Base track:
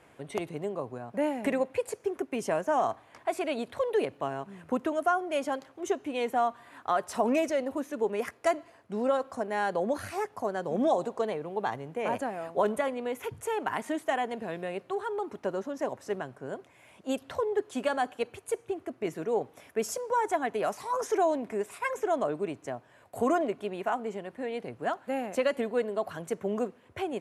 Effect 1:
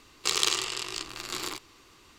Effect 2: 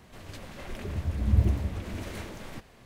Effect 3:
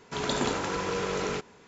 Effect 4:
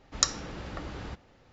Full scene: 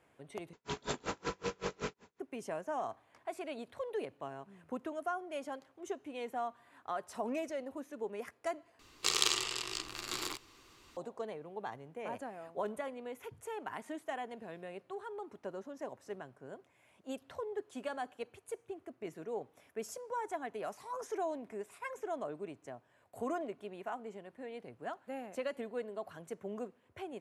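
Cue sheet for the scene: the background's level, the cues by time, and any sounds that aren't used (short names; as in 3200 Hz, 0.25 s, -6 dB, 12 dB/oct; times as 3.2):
base track -11 dB
0.53 replace with 3 -3 dB + dB-linear tremolo 5.3 Hz, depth 36 dB
8.79 replace with 1 -4.5 dB
not used: 2, 4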